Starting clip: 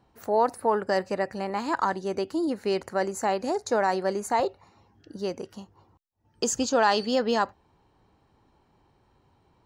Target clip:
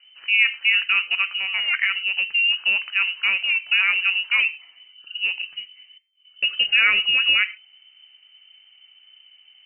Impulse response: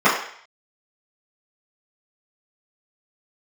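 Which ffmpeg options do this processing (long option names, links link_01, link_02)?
-filter_complex "[0:a]aemphasis=mode=reproduction:type=bsi,asplit=2[link_01][link_02];[1:a]atrim=start_sample=2205,atrim=end_sample=6174,highshelf=frequency=2400:gain=-10[link_03];[link_02][link_03]afir=irnorm=-1:irlink=0,volume=-35dB[link_04];[link_01][link_04]amix=inputs=2:normalize=0,lowpass=frequency=2600:width_type=q:width=0.5098,lowpass=frequency=2600:width_type=q:width=0.6013,lowpass=frequency=2600:width_type=q:width=0.9,lowpass=frequency=2600:width_type=q:width=2.563,afreqshift=-3100,volume=3.5dB"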